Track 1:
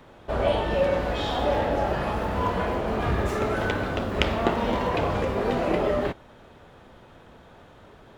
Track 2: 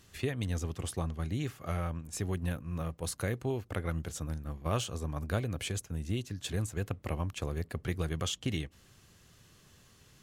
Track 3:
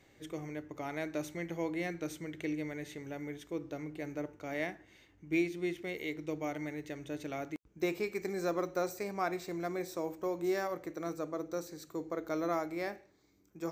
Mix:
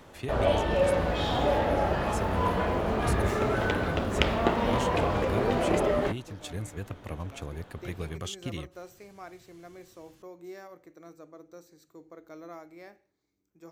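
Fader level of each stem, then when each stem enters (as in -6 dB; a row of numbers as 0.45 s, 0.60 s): -1.5 dB, -3.0 dB, -11.0 dB; 0.00 s, 0.00 s, 0.00 s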